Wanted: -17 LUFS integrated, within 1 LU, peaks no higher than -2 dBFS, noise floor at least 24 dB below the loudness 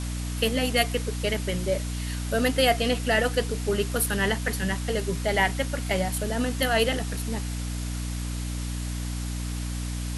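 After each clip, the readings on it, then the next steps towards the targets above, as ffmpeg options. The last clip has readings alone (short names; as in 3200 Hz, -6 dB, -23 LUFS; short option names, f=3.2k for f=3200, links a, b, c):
hum 60 Hz; harmonics up to 300 Hz; hum level -28 dBFS; noise floor -31 dBFS; noise floor target -51 dBFS; loudness -26.5 LUFS; peak -8.0 dBFS; loudness target -17.0 LUFS
-> -af "bandreject=f=60:t=h:w=6,bandreject=f=120:t=h:w=6,bandreject=f=180:t=h:w=6,bandreject=f=240:t=h:w=6,bandreject=f=300:t=h:w=6"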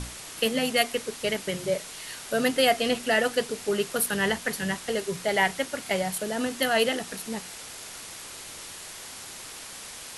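hum none; noise floor -42 dBFS; noise floor target -51 dBFS
-> -af "afftdn=nr=9:nf=-42"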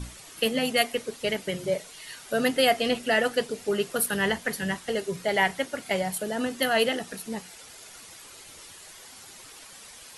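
noise floor -47 dBFS; noise floor target -51 dBFS
-> -af "afftdn=nr=6:nf=-47"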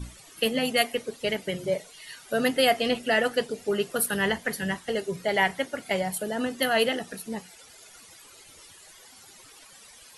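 noise floor -51 dBFS; loudness -27.0 LUFS; peak -9.0 dBFS; loudness target -17.0 LUFS
-> -af "volume=10dB,alimiter=limit=-2dB:level=0:latency=1"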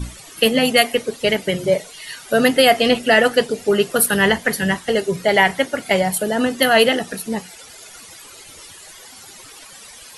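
loudness -17.0 LUFS; peak -2.0 dBFS; noise floor -41 dBFS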